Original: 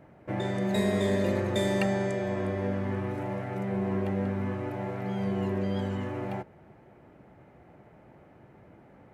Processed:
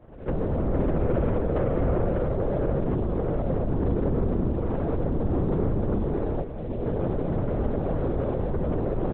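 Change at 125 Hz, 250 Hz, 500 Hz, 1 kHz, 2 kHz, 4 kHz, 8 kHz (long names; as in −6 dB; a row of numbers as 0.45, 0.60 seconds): +6.5 dB, +3.0 dB, +4.5 dB, +2.5 dB, −6.5 dB, below −10 dB, can't be measured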